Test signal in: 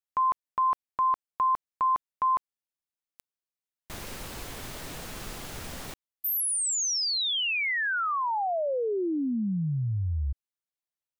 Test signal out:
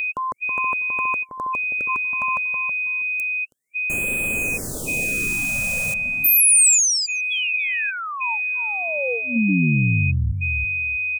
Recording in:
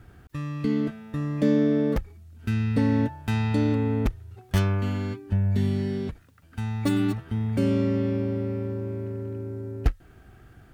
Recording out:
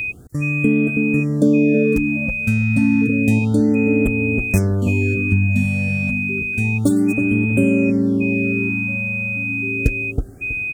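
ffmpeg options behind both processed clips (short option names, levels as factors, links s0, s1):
-filter_complex "[0:a]equalizer=f=125:t=o:w=1:g=4,equalizer=f=250:t=o:w=1:g=6,equalizer=f=500:t=o:w=1:g=7,equalizer=f=1000:t=o:w=1:g=-6,equalizer=f=2000:t=o:w=1:g=-5,equalizer=f=4000:t=o:w=1:g=-6,equalizer=f=8000:t=o:w=1:g=11,asplit=2[s0][s1];[s1]adelay=323,lowpass=f=810:p=1,volume=0.562,asplit=2[s2][s3];[s3]adelay=323,lowpass=f=810:p=1,volume=0.22,asplit=2[s4][s5];[s5]adelay=323,lowpass=f=810:p=1,volume=0.22[s6];[s0][s2][s4][s6]amix=inputs=4:normalize=0,aeval=exprs='val(0)+0.0501*sin(2*PI*2500*n/s)':c=same,acompressor=threshold=0.0794:ratio=2:attack=60:release=272:knee=1:detection=peak,highshelf=f=9600:g=7.5,afftfilt=real='re*(1-between(b*sr/1024,330*pow(5200/330,0.5+0.5*sin(2*PI*0.3*pts/sr))/1.41,330*pow(5200/330,0.5+0.5*sin(2*PI*0.3*pts/sr))*1.41))':imag='im*(1-between(b*sr/1024,330*pow(5200/330,0.5+0.5*sin(2*PI*0.3*pts/sr))/1.41,330*pow(5200/330,0.5+0.5*sin(2*PI*0.3*pts/sr))*1.41))':win_size=1024:overlap=0.75,volume=1.68"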